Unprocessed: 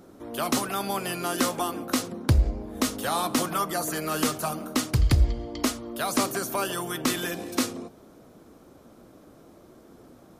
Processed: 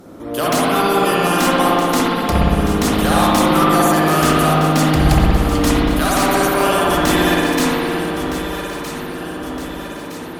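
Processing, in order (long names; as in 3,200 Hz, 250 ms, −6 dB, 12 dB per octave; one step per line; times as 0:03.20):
sine wavefolder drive 9 dB, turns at −10.5 dBFS
on a send: delay that swaps between a low-pass and a high-pass 632 ms, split 1,600 Hz, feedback 74%, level −7.5 dB
on the sum: spring reverb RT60 2.4 s, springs 58 ms, chirp 65 ms, DRR −6 dB
level −4.5 dB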